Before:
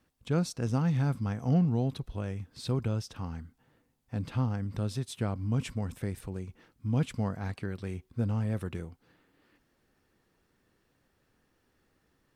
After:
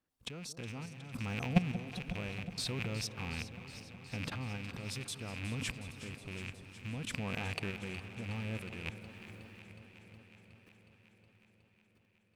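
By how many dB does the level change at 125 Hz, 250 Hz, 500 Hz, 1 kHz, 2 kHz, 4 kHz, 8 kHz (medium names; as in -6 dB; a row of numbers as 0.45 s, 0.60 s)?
-10.0 dB, -8.0 dB, -8.0 dB, -5.0 dB, +5.5 dB, +4.0 dB, +1.5 dB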